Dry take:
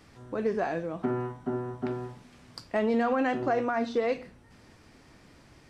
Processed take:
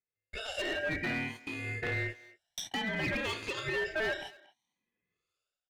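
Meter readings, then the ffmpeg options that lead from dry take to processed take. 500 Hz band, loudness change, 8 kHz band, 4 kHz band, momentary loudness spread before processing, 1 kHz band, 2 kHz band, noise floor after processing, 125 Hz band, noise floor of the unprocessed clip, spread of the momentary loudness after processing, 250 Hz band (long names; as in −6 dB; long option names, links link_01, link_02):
−9.5 dB, −4.5 dB, can't be measured, +9.5 dB, 12 LU, −11.0 dB, +5.0 dB, below −85 dBFS, −1.5 dB, −57 dBFS, 10 LU, −10.0 dB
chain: -filter_complex "[0:a]afftfilt=real='re*pow(10,19/40*sin(2*PI*(1.6*log(max(b,1)*sr/1024/100)/log(2)-(0.58)*(pts-256)/sr)))':imag='im*pow(10,19/40*sin(2*PI*(1.6*log(max(b,1)*sr/1024/100)/log(2)-(0.58)*(pts-256)/sr)))':win_size=1024:overlap=0.75,highpass=frequency=710:width=0.5412,highpass=frequency=710:width=1.3066,agate=range=-39dB:threshold=-46dB:ratio=16:detection=peak,dynaudnorm=framelen=120:gausssize=7:maxgain=14dB,alimiter=limit=-9.5dB:level=0:latency=1:release=77,acompressor=threshold=-32dB:ratio=1.5,asoftclip=type=tanh:threshold=-20.5dB,acrossover=split=1500[link_01][link_02];[link_01]aeval=exprs='val(0)*(1-1/2+1/2*cos(2*PI*1*n/s))':channel_layout=same[link_03];[link_02]aeval=exprs='val(0)*(1-1/2-1/2*cos(2*PI*1*n/s))':channel_layout=same[link_04];[link_03][link_04]amix=inputs=2:normalize=0,volume=31.5dB,asoftclip=hard,volume=-31.5dB,aeval=exprs='val(0)*sin(2*PI*1100*n/s)':channel_layout=same,asplit=2[link_05][link_06];[link_06]adelay=230,highpass=300,lowpass=3400,asoftclip=type=hard:threshold=-40dB,volume=-17dB[link_07];[link_05][link_07]amix=inputs=2:normalize=0,volume=4.5dB"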